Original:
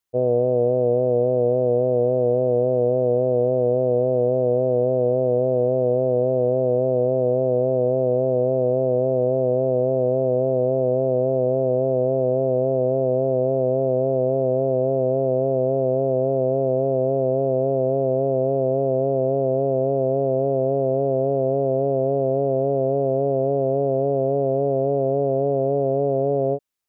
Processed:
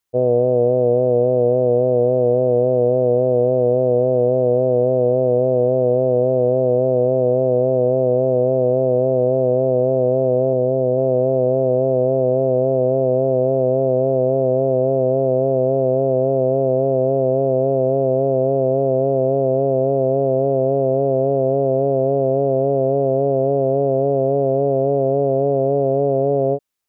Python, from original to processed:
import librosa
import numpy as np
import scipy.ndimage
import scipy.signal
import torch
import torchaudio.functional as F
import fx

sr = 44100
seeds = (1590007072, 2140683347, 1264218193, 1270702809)

y = fx.lowpass(x, sr, hz=1000.0, slope=6, at=(10.53, 10.98))
y = F.gain(torch.from_numpy(y), 3.5).numpy()